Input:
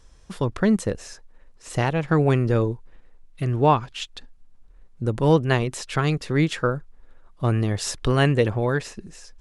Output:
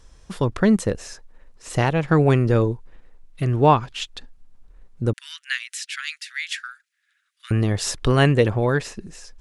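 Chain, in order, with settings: 5.13–7.51 s: steep high-pass 1.6 kHz 48 dB/octave; trim +2.5 dB

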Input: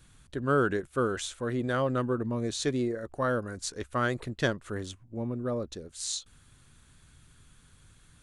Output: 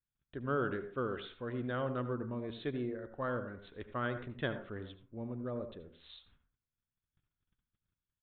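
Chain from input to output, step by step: gate -52 dBFS, range -30 dB; on a send at -9.5 dB: reverberation RT60 0.40 s, pre-delay 67 ms; on the sum: resampled via 8 kHz; trim -8.5 dB

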